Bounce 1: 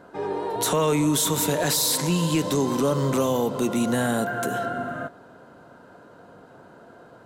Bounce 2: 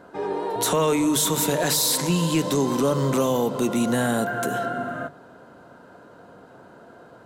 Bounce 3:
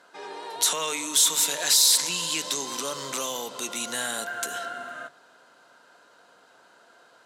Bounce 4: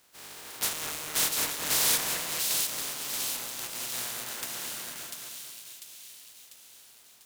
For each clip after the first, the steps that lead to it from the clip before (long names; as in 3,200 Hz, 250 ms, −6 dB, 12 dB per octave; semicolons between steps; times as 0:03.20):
mains-hum notches 50/100/150 Hz; level +1 dB
resonant band-pass 5,500 Hz, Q 0.71; level +5.5 dB
compressing power law on the bin magnitudes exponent 0.13; echo with a time of its own for lows and highs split 2,500 Hz, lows 220 ms, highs 695 ms, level −3.5 dB; level −6.5 dB